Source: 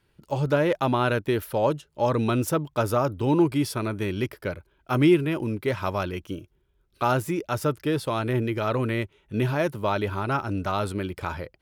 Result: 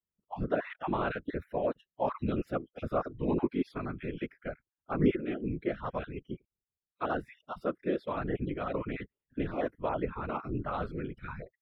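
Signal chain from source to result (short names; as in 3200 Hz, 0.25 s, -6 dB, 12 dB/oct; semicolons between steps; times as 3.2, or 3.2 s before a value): random spectral dropouts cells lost 22%; spectral noise reduction 25 dB; 4.48–4.97 high shelf 5200 Hz -10 dB; whisperiser; air absorption 400 m; gain -5.5 dB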